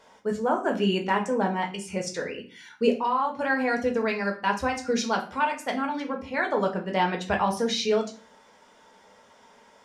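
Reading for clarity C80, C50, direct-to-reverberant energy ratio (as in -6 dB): 16.0 dB, 12.0 dB, 1.5 dB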